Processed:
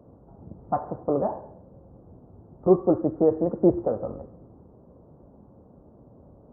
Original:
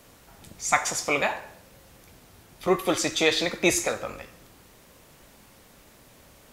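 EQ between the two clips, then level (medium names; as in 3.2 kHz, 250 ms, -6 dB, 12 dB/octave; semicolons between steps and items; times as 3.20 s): Gaussian low-pass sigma 12 samples; high-pass 60 Hz; +7.0 dB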